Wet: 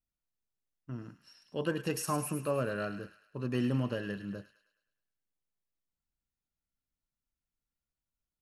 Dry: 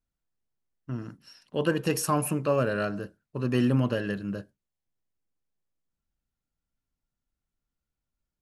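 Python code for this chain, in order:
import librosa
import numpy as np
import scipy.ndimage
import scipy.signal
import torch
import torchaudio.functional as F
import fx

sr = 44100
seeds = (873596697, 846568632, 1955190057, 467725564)

y = fx.echo_wet_highpass(x, sr, ms=105, feedback_pct=49, hz=1700.0, wet_db=-8.0)
y = y * librosa.db_to_amplitude(-7.0)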